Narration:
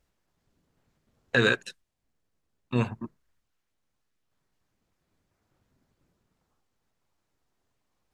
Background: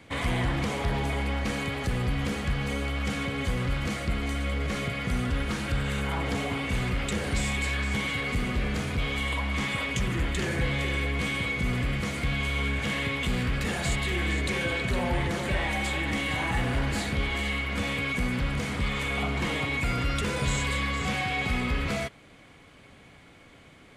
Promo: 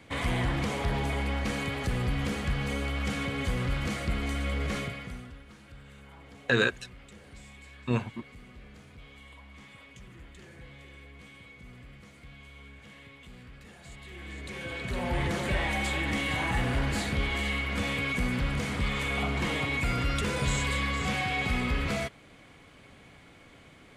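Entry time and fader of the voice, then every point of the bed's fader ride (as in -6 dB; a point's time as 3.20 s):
5.15 s, -2.0 dB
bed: 4.77 s -1.5 dB
5.42 s -21.5 dB
13.80 s -21.5 dB
15.25 s -1 dB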